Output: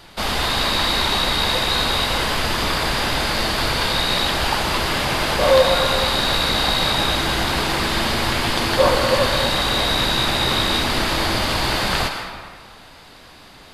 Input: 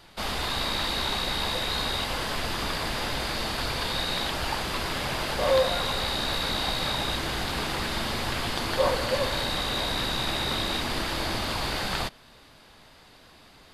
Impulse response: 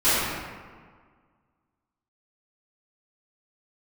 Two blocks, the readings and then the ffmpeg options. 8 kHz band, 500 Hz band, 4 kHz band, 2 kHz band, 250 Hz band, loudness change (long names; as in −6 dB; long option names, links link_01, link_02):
+8.5 dB, +8.5 dB, +9.0 dB, +9.5 dB, +9.0 dB, +9.0 dB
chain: -filter_complex "[0:a]asplit=2[link_01][link_02];[1:a]atrim=start_sample=2205,lowshelf=frequency=430:gain=-11.5,adelay=89[link_03];[link_02][link_03]afir=irnorm=-1:irlink=0,volume=-22.5dB[link_04];[link_01][link_04]amix=inputs=2:normalize=0,volume=8dB"